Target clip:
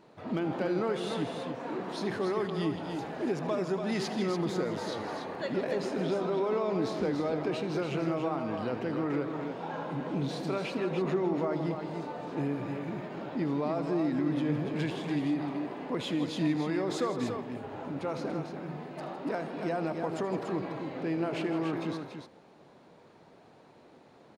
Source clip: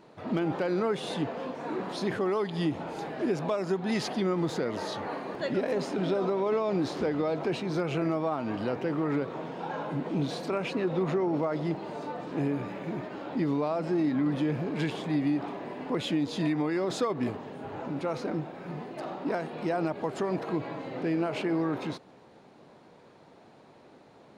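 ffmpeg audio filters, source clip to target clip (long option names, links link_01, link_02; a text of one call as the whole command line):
ffmpeg -i in.wav -filter_complex "[0:a]asplit=2[link_01][link_02];[link_02]aecho=0:1:79|160|288:0.168|0.224|0.473[link_03];[link_01][link_03]amix=inputs=2:normalize=0,volume=-3dB" out.wav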